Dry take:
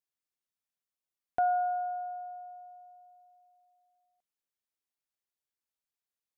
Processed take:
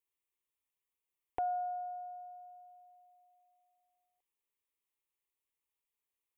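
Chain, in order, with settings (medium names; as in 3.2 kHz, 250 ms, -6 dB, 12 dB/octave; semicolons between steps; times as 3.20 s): static phaser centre 990 Hz, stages 8; trim +3 dB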